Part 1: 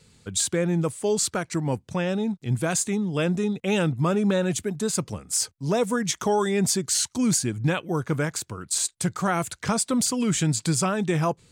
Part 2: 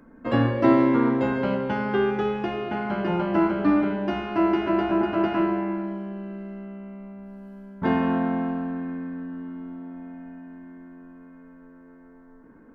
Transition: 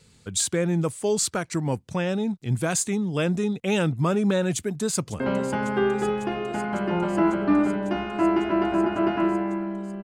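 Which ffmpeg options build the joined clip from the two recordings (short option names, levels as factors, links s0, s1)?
-filter_complex "[0:a]apad=whole_dur=10.03,atrim=end=10.03,atrim=end=5.202[s0];[1:a]atrim=start=1.368:end=6.2[s1];[s0][s1]acrossfade=d=0.004:c1=hsin:c2=hsin,asplit=2[s2][s3];[s3]afade=t=in:st=4.52:d=0.01,afade=t=out:st=5.2:d=0.01,aecho=0:1:550|1100|1650|2200|2750|3300|3850|4400|4950|5500|6050|6600:0.16788|0.134304|0.107443|0.0859548|0.0687638|0.0550111|0.0440088|0.0352071|0.0281657|0.0225325|0.018026|0.0144208[s4];[s2][s4]amix=inputs=2:normalize=0"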